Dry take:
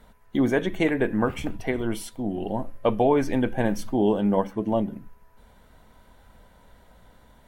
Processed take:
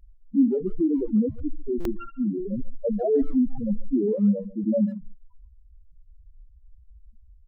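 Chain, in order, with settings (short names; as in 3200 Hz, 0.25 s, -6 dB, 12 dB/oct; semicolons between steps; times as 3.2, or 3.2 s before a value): 1.92–2.48 sample sorter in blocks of 32 samples; steep low-pass 3300 Hz 48 dB/oct; limiter -17.5 dBFS, peak gain reduction 8 dB; loudest bins only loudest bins 2; 4.15–4.64 fixed phaser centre 620 Hz, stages 8; speakerphone echo 0.14 s, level -20 dB; stuck buffer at 1.8, samples 256, times 8; gain +8 dB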